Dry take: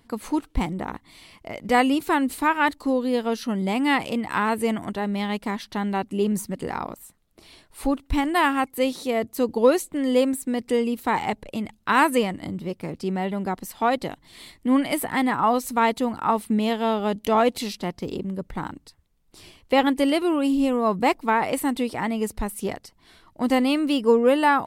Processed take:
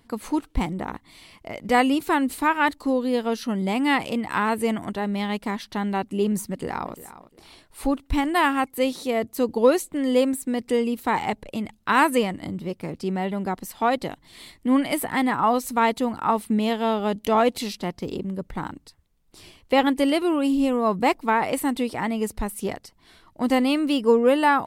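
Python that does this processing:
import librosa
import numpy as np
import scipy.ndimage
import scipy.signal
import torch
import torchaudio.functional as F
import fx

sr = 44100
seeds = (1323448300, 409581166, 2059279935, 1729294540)

y = fx.echo_throw(x, sr, start_s=6.49, length_s=0.44, ms=350, feedback_pct=20, wet_db=-15.5)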